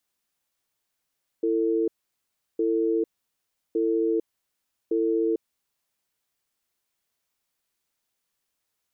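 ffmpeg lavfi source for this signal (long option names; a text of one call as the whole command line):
ffmpeg -f lavfi -i "aevalsrc='0.0668*(sin(2*PI*333*t)+sin(2*PI*448*t))*clip(min(mod(t,1.16),0.45-mod(t,1.16))/0.005,0,1)':duration=4.22:sample_rate=44100" out.wav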